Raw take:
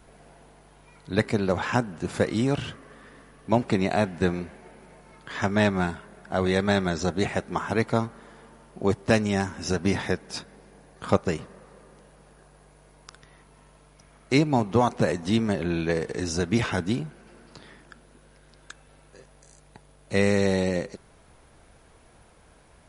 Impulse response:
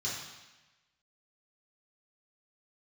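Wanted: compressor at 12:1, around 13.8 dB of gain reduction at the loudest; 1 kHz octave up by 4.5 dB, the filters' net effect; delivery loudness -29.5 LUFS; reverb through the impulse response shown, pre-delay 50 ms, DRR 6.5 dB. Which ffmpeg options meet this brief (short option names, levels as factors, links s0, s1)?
-filter_complex "[0:a]equalizer=f=1000:t=o:g=6,acompressor=threshold=0.0447:ratio=12,asplit=2[s0][s1];[1:a]atrim=start_sample=2205,adelay=50[s2];[s1][s2]afir=irnorm=-1:irlink=0,volume=0.299[s3];[s0][s3]amix=inputs=2:normalize=0,volume=1.5"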